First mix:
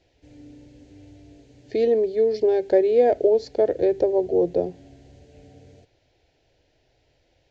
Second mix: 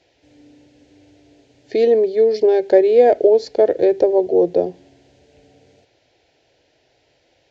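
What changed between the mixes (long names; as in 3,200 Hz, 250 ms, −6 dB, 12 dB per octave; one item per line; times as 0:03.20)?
speech +7.0 dB
master: add high-pass filter 270 Hz 6 dB per octave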